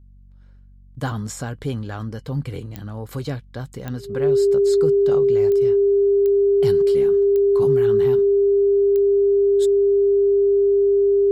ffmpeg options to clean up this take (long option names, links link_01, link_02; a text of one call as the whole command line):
ffmpeg -i in.wav -af "adeclick=threshold=4,bandreject=frequency=47.3:width_type=h:width=4,bandreject=frequency=94.6:width_type=h:width=4,bandreject=frequency=141.9:width_type=h:width=4,bandreject=frequency=189.2:width_type=h:width=4,bandreject=frequency=236.5:width_type=h:width=4,bandreject=frequency=400:width=30" out.wav